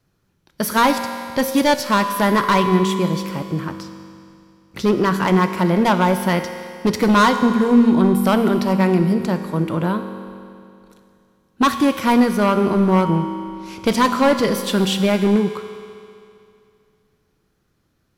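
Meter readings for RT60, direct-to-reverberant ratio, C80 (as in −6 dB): 2.5 s, 7.0 dB, 9.0 dB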